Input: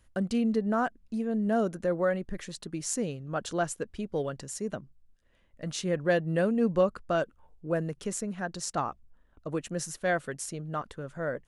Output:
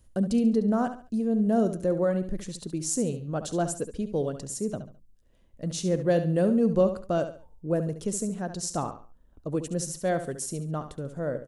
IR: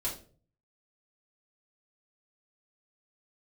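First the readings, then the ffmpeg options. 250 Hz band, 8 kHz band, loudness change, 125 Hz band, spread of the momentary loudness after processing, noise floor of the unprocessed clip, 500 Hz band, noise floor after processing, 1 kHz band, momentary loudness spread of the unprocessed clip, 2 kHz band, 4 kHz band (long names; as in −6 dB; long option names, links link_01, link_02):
+4.5 dB, +3.5 dB, +3.0 dB, +5.0 dB, 11 LU, −64 dBFS, +2.5 dB, −59 dBFS, −0.5 dB, 10 LU, −6.5 dB, 0.0 dB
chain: -filter_complex "[0:a]equalizer=frequency=1800:width_type=o:width=2.1:gain=-12.5,asplit=2[link_01][link_02];[link_02]aecho=0:1:70|140|210:0.299|0.0955|0.0306[link_03];[link_01][link_03]amix=inputs=2:normalize=0,volume=5dB"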